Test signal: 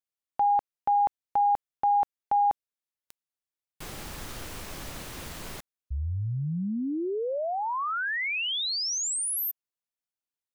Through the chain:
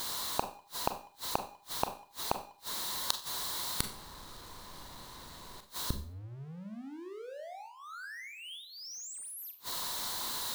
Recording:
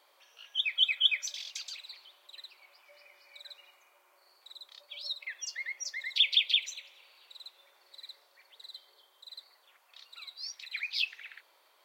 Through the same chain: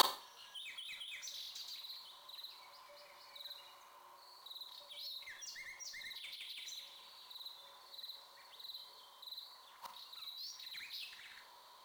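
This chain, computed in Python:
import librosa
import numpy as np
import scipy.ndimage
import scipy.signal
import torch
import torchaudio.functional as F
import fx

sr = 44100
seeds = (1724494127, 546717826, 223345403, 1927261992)

y = fx.graphic_eq_31(x, sr, hz=(1000, 2500, 4000), db=(12, -11, 11))
y = fx.over_compress(y, sr, threshold_db=-29.0, ratio=-0.5)
y = fx.power_curve(y, sr, exponent=0.5)
y = fx.gate_flip(y, sr, shuts_db=-33.0, range_db=-39)
y = fx.rev_schroeder(y, sr, rt60_s=0.4, comb_ms=30, drr_db=7.0)
y = y * librosa.db_to_amplitude(16.0)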